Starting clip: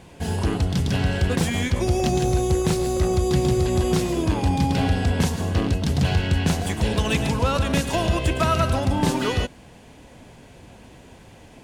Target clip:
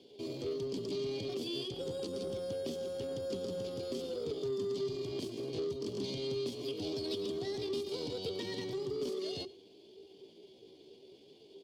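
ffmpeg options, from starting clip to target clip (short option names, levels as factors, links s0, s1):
-filter_complex "[0:a]asplit=3[s0][s1][s2];[s0]bandpass=f=270:t=q:w=8,volume=1[s3];[s1]bandpass=f=2290:t=q:w=8,volume=0.501[s4];[s2]bandpass=f=3010:t=q:w=8,volume=0.355[s5];[s3][s4][s5]amix=inputs=3:normalize=0,acrossover=split=140|3000[s6][s7][s8];[s7]acompressor=threshold=0.0178:ratio=6[s9];[s6][s9][s8]amix=inputs=3:normalize=0,asplit=2[s10][s11];[s11]asoftclip=type=tanh:threshold=0.0119,volume=0.668[s12];[s10][s12]amix=inputs=2:normalize=0,asetrate=64194,aresample=44100,atempo=0.686977,bandreject=f=360:w=12,asplit=2[s13][s14];[s14]aecho=0:1:97:0.0794[s15];[s13][s15]amix=inputs=2:normalize=0,volume=0.794"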